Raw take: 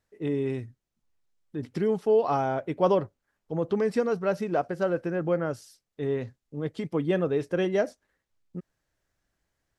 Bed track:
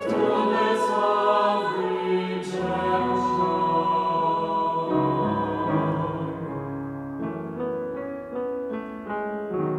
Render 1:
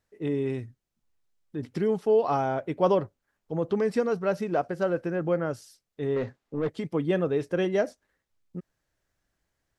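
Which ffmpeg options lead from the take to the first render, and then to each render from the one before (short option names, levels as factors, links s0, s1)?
-filter_complex "[0:a]asettb=1/sr,asplit=3[s0][s1][s2];[s0]atrim=end=6.164[s3];[s1]atrim=start=6.16:end=6.7,asetpts=PTS-STARTPTS,afade=t=in:d=0.004:c=qsin,afade=t=out:st=0.536:d=0.004:c=qsin,asplit=2[s4][s5];[s5]highpass=f=720:p=1,volume=12.6,asoftclip=type=tanh:threshold=0.126[s6];[s4][s6]amix=inputs=2:normalize=0,lowpass=f=1100:p=1,volume=0.501[s7];[s2]atrim=start=6.696[s8];[s3][s7]acrossfade=d=0.004:c1=hsin:c2=qsin[s9];[s9][s8]acrossfade=d=0.004:c1=qsin:c2=hsin"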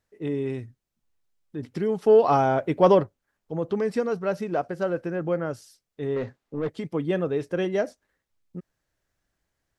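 -filter_complex "[0:a]asplit=3[s0][s1][s2];[s0]afade=t=out:st=2.01:d=0.02[s3];[s1]acontrast=45,afade=t=in:st=2.01:d=0.02,afade=t=out:st=3.02:d=0.02[s4];[s2]afade=t=in:st=3.02:d=0.02[s5];[s3][s4][s5]amix=inputs=3:normalize=0"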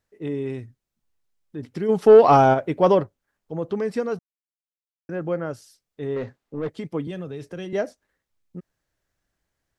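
-filter_complex "[0:a]asplit=3[s0][s1][s2];[s0]afade=t=out:st=1.88:d=0.02[s3];[s1]acontrast=71,afade=t=in:st=1.88:d=0.02,afade=t=out:st=2.53:d=0.02[s4];[s2]afade=t=in:st=2.53:d=0.02[s5];[s3][s4][s5]amix=inputs=3:normalize=0,asettb=1/sr,asplit=3[s6][s7][s8];[s6]atrim=end=7.074[s9];[s7]atrim=start=7.07:end=7.73,asetpts=PTS-STARTPTS,afade=t=in:d=0.004:c=qsin,afade=t=out:st=0.656:d=0.004:c=qsin,acrossover=split=170|3000[s10][s11][s12];[s11]acompressor=threshold=0.0224:ratio=6:attack=3.2:release=140:knee=2.83:detection=peak[s13];[s10][s13][s12]amix=inputs=3:normalize=0[s14];[s8]atrim=start=7.726[s15];[s9][s14]acrossfade=d=0.004:c1=hsin:c2=qsin[s16];[s16][s15]acrossfade=d=0.004:c1=qsin:c2=hsin,asplit=3[s17][s18][s19];[s17]atrim=end=4.19,asetpts=PTS-STARTPTS,afade=t=out:st=4.186:d=0.004:c=hsin[s20];[s18]atrim=start=4.19:end=5.09,asetpts=PTS-STARTPTS,volume=0[s21];[s19]atrim=start=5.09,asetpts=PTS-STARTPTS,afade=t=in:d=0.004:c=hsin[s22];[s20][s21][s22]concat=n=3:v=0:a=1"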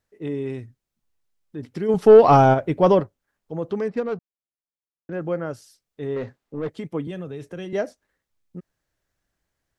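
-filter_complex "[0:a]asettb=1/sr,asplit=3[s0][s1][s2];[s0]atrim=end=1.944[s3];[s1]atrim=start=1.94:end=3,asetpts=PTS-STARTPTS,afade=t=in:d=0.004:c=qsin,afade=t=out:st=1.056:d=0.004:c=qsin,lowshelf=f=110:g=12[s4];[s2]atrim=start=2.996[s5];[s3][s4]acrossfade=d=0.004:c1=hsin:c2=qsin[s6];[s6][s5]acrossfade=d=0.004:c1=qsin:c2=hsin,asettb=1/sr,asplit=3[s7][s8][s9];[s7]atrim=end=3.884[s10];[s8]atrim=start=3.88:end=5.13,asetpts=PTS-STARTPTS,afade=t=in:d=0.004:c=qsin,afade=t=out:st=1.246:d=0.004:c=qsin,adynamicsmooth=sensitivity=3.5:basefreq=1300[s11];[s9]atrim=start=5.126[s12];[s10][s11]acrossfade=d=0.004:c1=hsin:c2=qsin[s13];[s13][s12]acrossfade=d=0.004:c1=qsin:c2=hsin,asettb=1/sr,asplit=3[s14][s15][s16];[s14]atrim=end=6.784[s17];[s15]atrim=start=6.78:end=7.67,asetpts=PTS-STARTPTS,afade=t=in:d=0.004:c=qsin,afade=t=out:st=0.886:d=0.004:c=qsin,equalizer=f=4800:w=3.3:g=-7[s18];[s16]atrim=start=7.666[s19];[s17][s18]acrossfade=d=0.004:c1=hsin:c2=qsin[s20];[s20][s19]acrossfade=d=0.004:c1=qsin:c2=hsin"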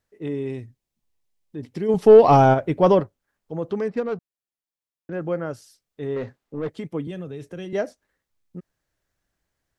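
-filter_complex "[0:a]asettb=1/sr,asplit=3[s0][s1][s2];[s0]atrim=end=0.444[s3];[s1]atrim=start=0.44:end=2.41,asetpts=PTS-STARTPTS,afade=t=in:d=0.004:c=qsin,afade=t=out:st=1.966:d=0.004:c=qsin,equalizer=f=1400:t=o:w=0.43:g=-7[s4];[s2]atrim=start=2.406[s5];[s3][s4]acrossfade=d=0.004:c1=hsin:c2=qsin[s6];[s6][s5]acrossfade=d=0.004:c1=qsin:c2=hsin,asettb=1/sr,asplit=3[s7][s8][s9];[s7]atrim=end=6.934[s10];[s8]atrim=start=6.93:end=7.75,asetpts=PTS-STARTPTS,afade=t=in:d=0.004:c=qsin,afade=t=out:st=0.816:d=0.004:c=qsin,equalizer=f=1100:w=0.66:g=-3[s11];[s9]atrim=start=7.746[s12];[s10][s11]acrossfade=d=0.004:c1=hsin:c2=qsin[s13];[s13][s12]acrossfade=d=0.004:c1=qsin:c2=hsin"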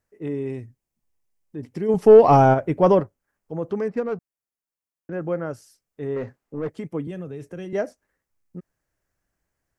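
-af "equalizer=f=3700:w=1.9:g=-8.5"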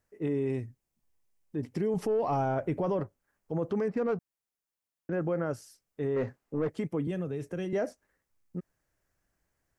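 -af "acompressor=threshold=0.112:ratio=6,alimiter=limit=0.075:level=0:latency=1:release=29"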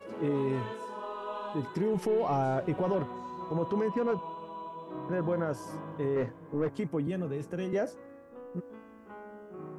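-filter_complex "[1:a]volume=0.133[s0];[0:a][s0]amix=inputs=2:normalize=0"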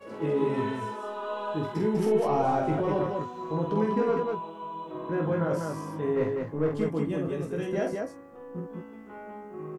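-filter_complex "[0:a]asplit=2[s0][s1];[s1]adelay=19,volume=0.562[s2];[s0][s2]amix=inputs=2:normalize=0,aecho=1:1:46.65|198.3:0.631|0.708"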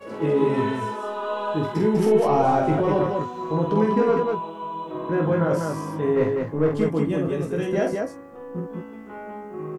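-af "volume=2"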